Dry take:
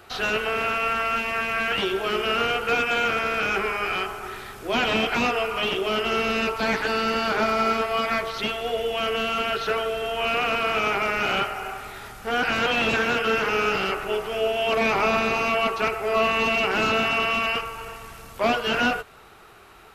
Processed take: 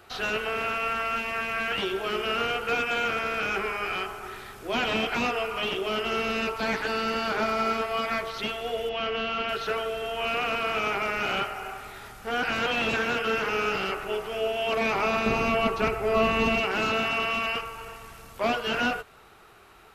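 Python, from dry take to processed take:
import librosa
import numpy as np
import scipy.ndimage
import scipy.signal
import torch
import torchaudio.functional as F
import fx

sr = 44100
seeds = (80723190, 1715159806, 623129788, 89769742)

y = fx.lowpass(x, sr, hz=5100.0, slope=24, at=(8.89, 9.49))
y = fx.low_shelf(y, sr, hz=340.0, db=11.5, at=(15.26, 16.6))
y = y * 10.0 ** (-4.0 / 20.0)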